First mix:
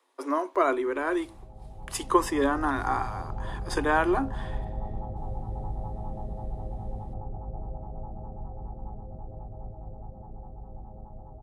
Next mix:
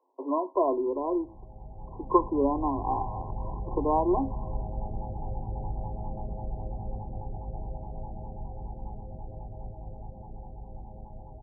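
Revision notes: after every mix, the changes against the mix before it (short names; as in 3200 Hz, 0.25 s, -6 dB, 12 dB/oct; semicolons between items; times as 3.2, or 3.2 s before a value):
master: add brick-wall FIR low-pass 1100 Hz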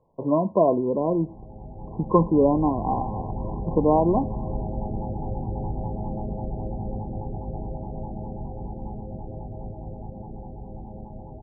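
speech: remove rippled Chebyshev high-pass 260 Hz, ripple 9 dB; background: add bell 260 Hz +11.5 dB 2.7 oct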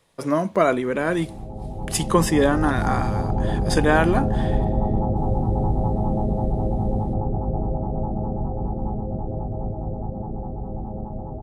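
background +8.0 dB; master: remove brick-wall FIR low-pass 1100 Hz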